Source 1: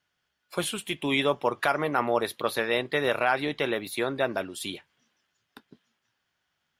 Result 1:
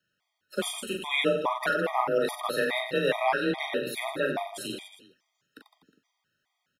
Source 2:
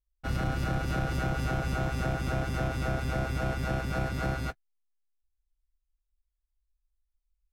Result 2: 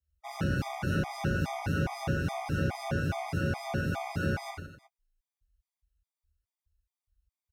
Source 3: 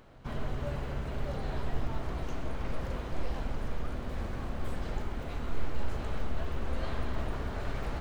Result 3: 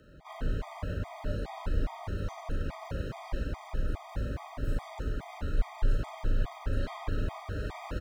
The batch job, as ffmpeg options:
-af "afreqshift=27,aecho=1:1:40|92|159.6|247.5|361.7:0.631|0.398|0.251|0.158|0.1,afftfilt=real='re*gt(sin(2*PI*2.4*pts/sr)*(1-2*mod(floor(b*sr/1024/630),2)),0)':imag='im*gt(sin(2*PI*2.4*pts/sr)*(1-2*mod(floor(b*sr/1024/630),2)),0)':win_size=1024:overlap=0.75"

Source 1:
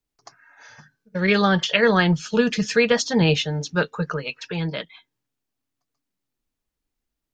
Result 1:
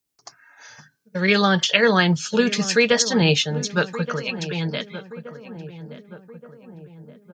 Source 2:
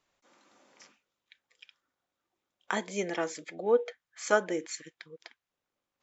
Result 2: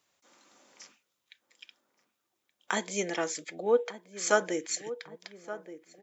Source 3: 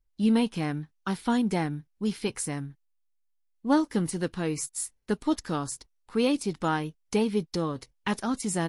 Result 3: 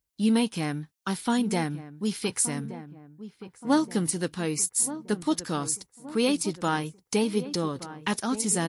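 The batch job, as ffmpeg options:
-filter_complex "[0:a]highpass=78,highshelf=f=4.5k:g=10,asplit=2[a][b];[b]adelay=1174,lowpass=f=1.2k:p=1,volume=-13dB,asplit=2[c][d];[d]adelay=1174,lowpass=f=1.2k:p=1,volume=0.54,asplit=2[e][f];[f]adelay=1174,lowpass=f=1.2k:p=1,volume=0.54,asplit=2[g][h];[h]adelay=1174,lowpass=f=1.2k:p=1,volume=0.54,asplit=2[i][j];[j]adelay=1174,lowpass=f=1.2k:p=1,volume=0.54,asplit=2[k][l];[l]adelay=1174,lowpass=f=1.2k:p=1,volume=0.54[m];[a][c][e][g][i][k][m]amix=inputs=7:normalize=0"

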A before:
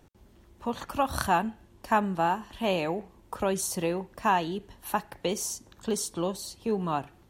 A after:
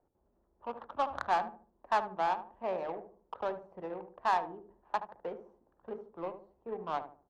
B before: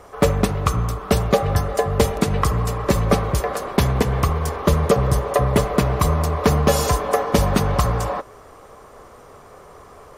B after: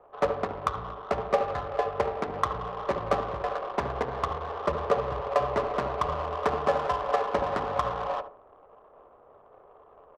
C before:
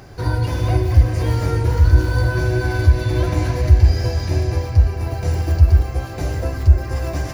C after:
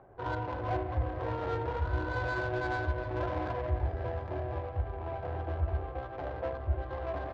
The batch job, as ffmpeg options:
-filter_complex "[0:a]acrossover=split=460 2100:gain=0.141 1 0.0708[a][b][c];[a][b][c]amix=inputs=3:normalize=0,bandreject=f=50:t=h:w=6,bandreject=f=100:t=h:w=6,bandreject=f=150:t=h:w=6,bandreject=f=200:t=h:w=6,bandreject=f=250:t=h:w=6,bandreject=f=300:t=h:w=6,bandreject=f=350:t=h:w=6,bandreject=f=400:t=h:w=6,bandreject=f=450:t=h:w=6,bandreject=f=500:t=h:w=6,adynamicsmooth=sensitivity=2:basefreq=650,asplit=2[d][e];[e]adelay=74,lowpass=f=880:p=1,volume=-8.5dB,asplit=2[f][g];[g]adelay=74,lowpass=f=880:p=1,volume=0.37,asplit=2[h][i];[i]adelay=74,lowpass=f=880:p=1,volume=0.37,asplit=2[j][k];[k]adelay=74,lowpass=f=880:p=1,volume=0.37[l];[f][h][j][l]amix=inputs=4:normalize=0[m];[d][m]amix=inputs=2:normalize=0,volume=-3dB"

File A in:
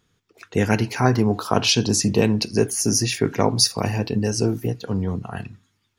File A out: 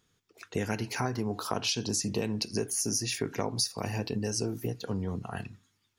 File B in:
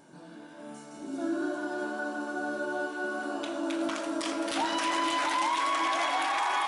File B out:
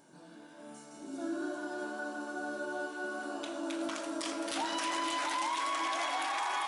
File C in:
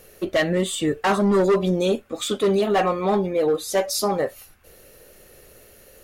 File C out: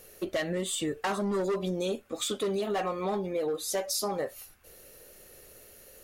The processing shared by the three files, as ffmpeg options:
-af "bass=f=250:g=-2,treble=f=4k:g=4,acompressor=threshold=-23dB:ratio=4,volume=-5dB"

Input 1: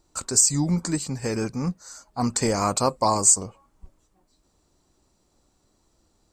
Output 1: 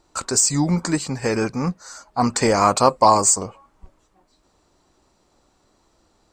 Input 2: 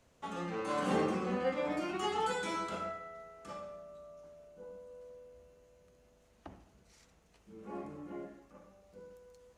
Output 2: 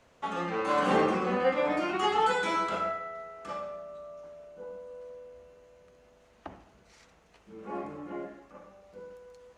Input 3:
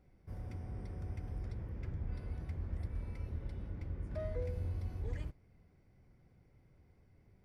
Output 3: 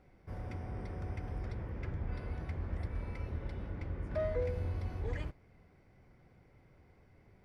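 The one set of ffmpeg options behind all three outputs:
-filter_complex "[0:a]asplit=2[a][b];[b]highpass=f=720:p=1,volume=7dB,asoftclip=type=tanh:threshold=-3.5dB[c];[a][c]amix=inputs=2:normalize=0,lowpass=f=2.4k:p=1,volume=-6dB,volume=7dB"

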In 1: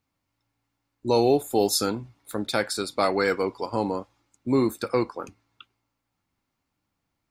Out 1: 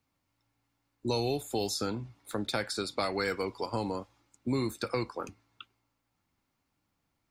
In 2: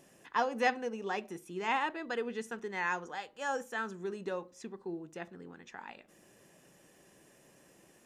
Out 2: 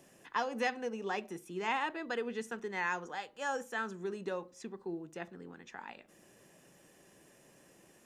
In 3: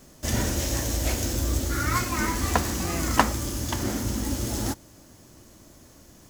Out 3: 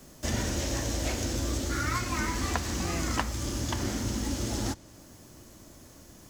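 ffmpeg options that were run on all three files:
-filter_complex "[0:a]acrossover=split=130|1900|7900[a][b][c][d];[a]acompressor=threshold=-32dB:ratio=4[e];[b]acompressor=threshold=-31dB:ratio=4[f];[c]acompressor=threshold=-35dB:ratio=4[g];[d]acompressor=threshold=-53dB:ratio=4[h];[e][f][g][h]amix=inputs=4:normalize=0"

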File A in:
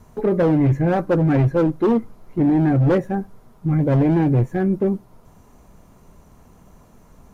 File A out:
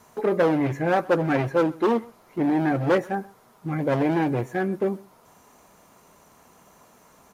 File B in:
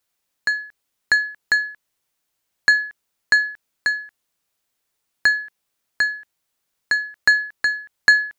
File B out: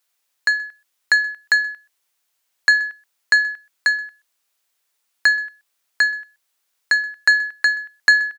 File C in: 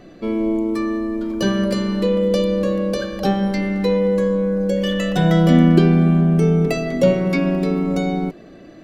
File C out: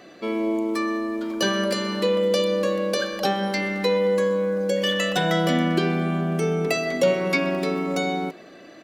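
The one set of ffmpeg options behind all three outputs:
-filter_complex "[0:a]aecho=1:1:127:0.0708,asplit=2[a][b];[b]alimiter=limit=-9.5dB:level=0:latency=1:release=188,volume=2dB[c];[a][c]amix=inputs=2:normalize=0,highpass=f=840:p=1,volume=-3dB"

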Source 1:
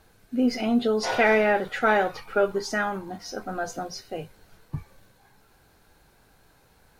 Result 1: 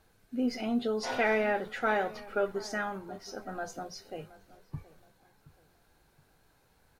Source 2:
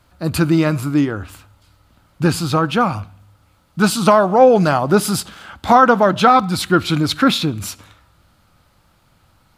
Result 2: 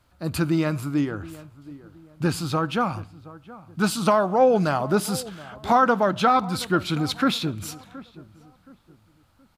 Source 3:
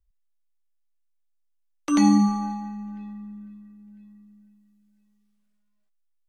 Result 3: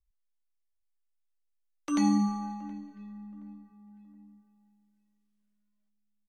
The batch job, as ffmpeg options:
-filter_complex "[0:a]asplit=2[a][b];[b]adelay=722,lowpass=f=1.3k:p=1,volume=-18dB,asplit=2[c][d];[d]adelay=722,lowpass=f=1.3k:p=1,volume=0.36,asplit=2[e][f];[f]adelay=722,lowpass=f=1.3k:p=1,volume=0.36[g];[a][c][e][g]amix=inputs=4:normalize=0,volume=-7.5dB"

